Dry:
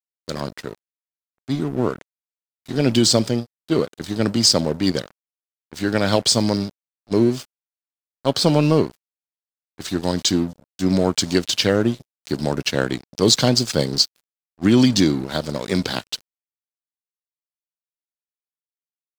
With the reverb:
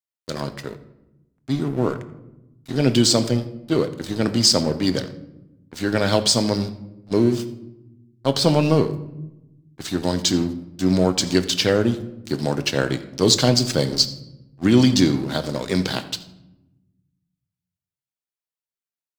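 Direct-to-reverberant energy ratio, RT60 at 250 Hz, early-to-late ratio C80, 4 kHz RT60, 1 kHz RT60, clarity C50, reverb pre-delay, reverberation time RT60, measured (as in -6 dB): 9.0 dB, 1.5 s, 15.0 dB, 0.55 s, 0.85 s, 13.0 dB, 6 ms, 0.95 s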